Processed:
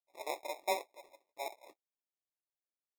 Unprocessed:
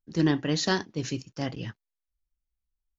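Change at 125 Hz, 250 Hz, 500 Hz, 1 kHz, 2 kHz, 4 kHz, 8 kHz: below −40 dB, −30.0 dB, −8.0 dB, −3.0 dB, −11.5 dB, −14.5 dB, can't be measured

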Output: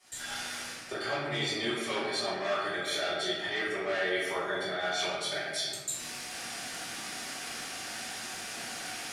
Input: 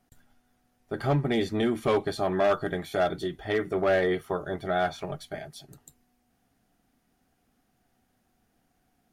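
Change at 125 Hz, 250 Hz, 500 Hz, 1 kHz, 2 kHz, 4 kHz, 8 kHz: −12.5 dB, −9.0 dB, −7.0 dB, −4.0 dB, +3.0 dB, +9.0 dB, can't be measured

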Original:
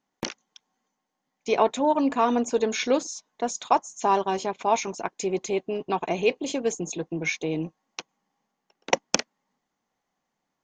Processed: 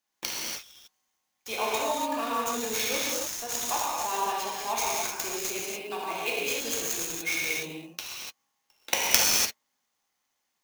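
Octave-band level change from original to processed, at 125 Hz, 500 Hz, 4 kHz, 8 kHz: −11.0, −8.5, +5.0, +6.0 decibels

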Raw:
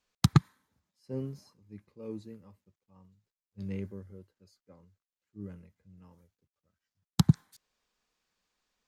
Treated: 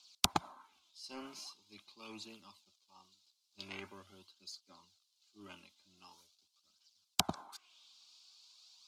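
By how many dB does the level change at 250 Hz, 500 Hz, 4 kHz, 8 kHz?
−16.0, −7.5, +4.0, +3.5 decibels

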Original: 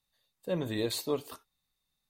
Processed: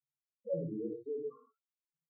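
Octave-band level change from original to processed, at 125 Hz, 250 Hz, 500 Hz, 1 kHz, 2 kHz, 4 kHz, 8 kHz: −6.0 dB, −6.0 dB, −4.0 dB, below −20 dB, below −40 dB, below −40 dB, below −35 dB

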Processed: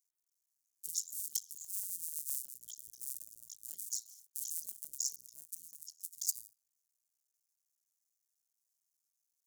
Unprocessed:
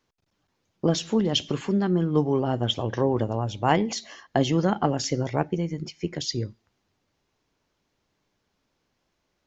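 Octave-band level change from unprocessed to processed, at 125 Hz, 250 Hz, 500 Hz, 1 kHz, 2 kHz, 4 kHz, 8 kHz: below −40 dB, below −40 dB, below −40 dB, below −40 dB, below −40 dB, −19.0 dB, can't be measured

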